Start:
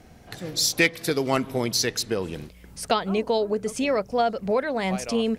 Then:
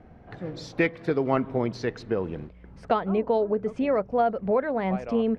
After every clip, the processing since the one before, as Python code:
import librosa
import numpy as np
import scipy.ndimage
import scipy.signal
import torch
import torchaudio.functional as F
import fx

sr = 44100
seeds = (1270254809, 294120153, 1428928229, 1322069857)

y = scipy.signal.sosfilt(scipy.signal.butter(2, 1500.0, 'lowpass', fs=sr, output='sos'), x)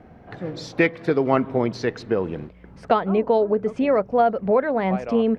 y = fx.low_shelf(x, sr, hz=69.0, db=-9.5)
y = y * 10.0 ** (5.0 / 20.0)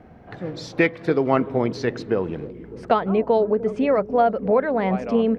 y = fx.echo_bbd(x, sr, ms=300, stages=1024, feedback_pct=74, wet_db=-15)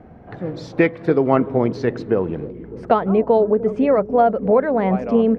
y = fx.high_shelf(x, sr, hz=2100.0, db=-10.5)
y = y * 10.0 ** (4.0 / 20.0)